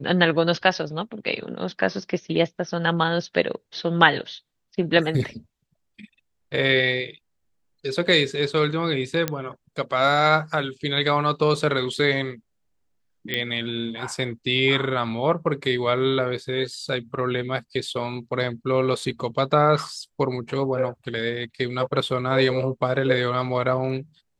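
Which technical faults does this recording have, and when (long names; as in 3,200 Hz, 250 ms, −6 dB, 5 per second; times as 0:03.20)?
0:09.28: click −8 dBFS
0:13.34: click −11 dBFS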